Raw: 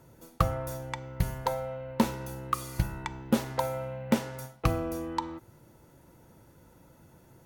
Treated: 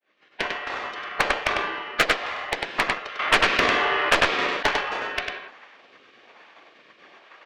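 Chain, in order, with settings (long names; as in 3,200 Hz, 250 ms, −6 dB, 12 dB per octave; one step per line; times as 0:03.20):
fade in at the beginning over 0.79 s
gate on every frequency bin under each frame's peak −30 dB weak
in parallel at −10 dB: sample-and-hold swept by an LFO 32×, swing 160% 1.2 Hz
on the sum: band-pass filter 470–2,300 Hz
high-frequency loss of the air 180 metres
on a send: single-tap delay 99 ms −4.5 dB
on the sum: harmonic generator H 2 −12 dB, 8 −19 dB, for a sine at −33.5 dBFS
boost into a limiter +35.5 dB
0:03.19–0:04.63: envelope flattener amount 50%
level −3.5 dB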